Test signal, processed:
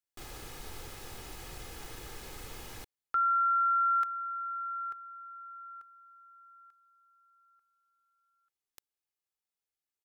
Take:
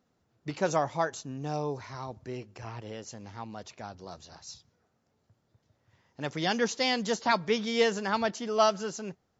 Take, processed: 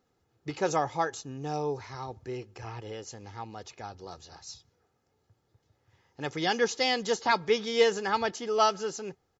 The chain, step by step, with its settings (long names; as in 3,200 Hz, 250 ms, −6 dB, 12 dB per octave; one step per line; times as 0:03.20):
comb filter 2.4 ms, depth 45%